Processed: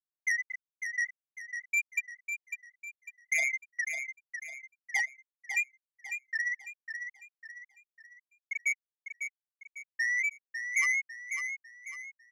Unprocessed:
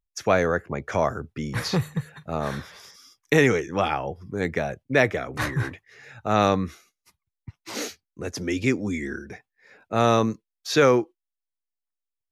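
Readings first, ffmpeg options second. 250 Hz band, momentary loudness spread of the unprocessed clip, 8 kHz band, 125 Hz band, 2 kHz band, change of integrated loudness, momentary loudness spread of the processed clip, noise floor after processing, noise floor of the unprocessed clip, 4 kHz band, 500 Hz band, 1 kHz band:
below −40 dB, 15 LU, −2.5 dB, below −40 dB, 0.0 dB, −8.0 dB, 18 LU, below −85 dBFS, below −85 dBFS, −17.0 dB, −38.0 dB, −25.5 dB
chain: -filter_complex "[0:a]lowpass=frequency=2200:width_type=q:width=0.5098,lowpass=frequency=2200:width_type=q:width=0.6013,lowpass=frequency=2200:width_type=q:width=0.9,lowpass=frequency=2200:width_type=q:width=2.563,afreqshift=-2600,asplit=2[link_01][link_02];[link_02]acrusher=bits=4:dc=4:mix=0:aa=0.000001,volume=-10dB[link_03];[link_01][link_03]amix=inputs=2:normalize=0,afftfilt=real='re*gte(hypot(re,im),0.891)':imag='im*gte(hypot(re,im),0.891)':win_size=1024:overlap=0.75,afreqshift=-69,acompressor=threshold=-35dB:ratio=3,asoftclip=type=tanh:threshold=-28dB,aemphasis=mode=production:type=riaa,aecho=1:1:550|1100|1650|2200|2750:0.422|0.169|0.0675|0.027|0.0108,volume=3dB"

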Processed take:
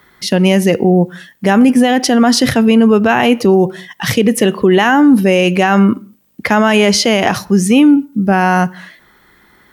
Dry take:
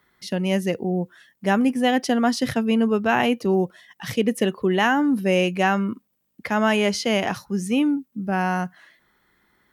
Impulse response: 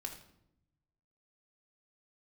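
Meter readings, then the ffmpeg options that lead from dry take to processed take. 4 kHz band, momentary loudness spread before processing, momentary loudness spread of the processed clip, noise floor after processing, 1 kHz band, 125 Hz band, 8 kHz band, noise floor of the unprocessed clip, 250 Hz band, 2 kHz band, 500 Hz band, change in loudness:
+11.0 dB, 10 LU, 7 LU, −50 dBFS, +9.0 dB, +11.5 dB, +14.0 dB, −72 dBFS, +11.5 dB, +9.0 dB, +10.5 dB, +10.5 dB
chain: -filter_complex "[0:a]asplit=2[link_01][link_02];[1:a]atrim=start_sample=2205,afade=type=out:start_time=0.28:duration=0.01,atrim=end_sample=12789[link_03];[link_02][link_03]afir=irnorm=-1:irlink=0,volume=-15dB[link_04];[link_01][link_04]amix=inputs=2:normalize=0,alimiter=level_in=15.5dB:limit=-1dB:release=50:level=0:latency=1,volume=-1dB"

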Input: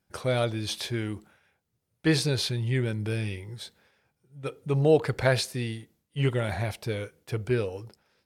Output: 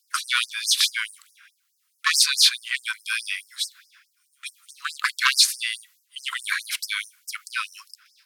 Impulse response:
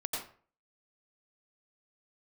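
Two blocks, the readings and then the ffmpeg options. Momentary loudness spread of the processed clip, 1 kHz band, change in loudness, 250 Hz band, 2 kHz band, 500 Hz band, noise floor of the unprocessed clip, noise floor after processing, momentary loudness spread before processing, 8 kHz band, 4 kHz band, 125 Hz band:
18 LU, +4.5 dB, +5.5 dB, below −40 dB, +10.0 dB, below −40 dB, −78 dBFS, −71 dBFS, 16 LU, +15.5 dB, +13.5 dB, below −40 dB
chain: -af "aeval=exprs='0.376*sin(PI/2*2.51*val(0)/0.376)':channel_layout=same,afftfilt=real='re*gte(b*sr/1024,970*pow(5000/970,0.5+0.5*sin(2*PI*4.7*pts/sr)))':imag='im*gte(b*sr/1024,970*pow(5000/970,0.5+0.5*sin(2*PI*4.7*pts/sr)))':win_size=1024:overlap=0.75,volume=4dB"

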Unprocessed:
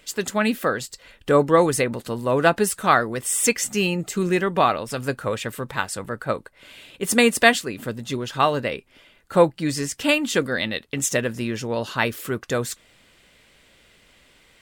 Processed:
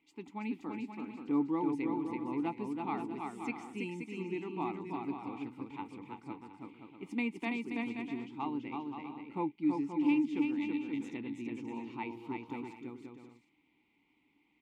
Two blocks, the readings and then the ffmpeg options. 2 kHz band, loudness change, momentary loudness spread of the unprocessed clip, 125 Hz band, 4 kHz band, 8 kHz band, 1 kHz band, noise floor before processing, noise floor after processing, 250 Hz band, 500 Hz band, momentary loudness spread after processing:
−21.0 dB, −15.0 dB, 12 LU, −19.0 dB, −26.0 dB, below −35 dB, −17.0 dB, −57 dBFS, −73 dBFS, −7.5 dB, −21.5 dB, 14 LU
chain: -filter_complex "[0:a]asplit=3[link_01][link_02][link_03];[link_01]bandpass=frequency=300:width_type=q:width=8,volume=0dB[link_04];[link_02]bandpass=frequency=870:width_type=q:width=8,volume=-6dB[link_05];[link_03]bandpass=frequency=2240:width_type=q:width=8,volume=-9dB[link_06];[link_04][link_05][link_06]amix=inputs=3:normalize=0,bass=frequency=250:gain=5,treble=frequency=4000:gain=-3,asplit=2[link_07][link_08];[link_08]aecho=0:1:330|528|646.8|718.1|760.8:0.631|0.398|0.251|0.158|0.1[link_09];[link_07][link_09]amix=inputs=2:normalize=0,volume=-5.5dB"

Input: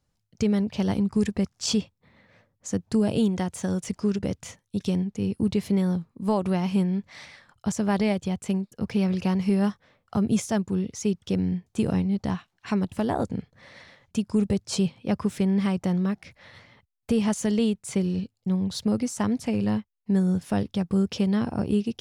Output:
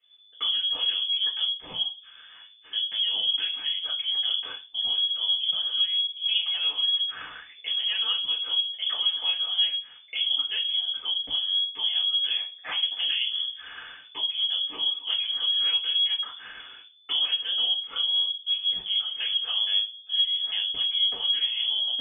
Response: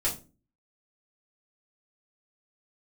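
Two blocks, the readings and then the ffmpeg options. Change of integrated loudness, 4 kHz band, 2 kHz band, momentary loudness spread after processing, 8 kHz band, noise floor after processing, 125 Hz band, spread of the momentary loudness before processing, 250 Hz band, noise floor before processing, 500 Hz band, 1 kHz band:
+2.0 dB, +20.5 dB, +2.5 dB, 7 LU, below −40 dB, −51 dBFS, below −35 dB, 7 LU, below −35 dB, −76 dBFS, below −20 dB, −10.0 dB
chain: -filter_complex "[0:a]acompressor=threshold=-31dB:ratio=10[link_01];[1:a]atrim=start_sample=2205[link_02];[link_01][link_02]afir=irnorm=-1:irlink=0,lowpass=frequency=3000:width_type=q:width=0.5098,lowpass=frequency=3000:width_type=q:width=0.6013,lowpass=frequency=3000:width_type=q:width=0.9,lowpass=frequency=3000:width_type=q:width=2.563,afreqshift=-3500"

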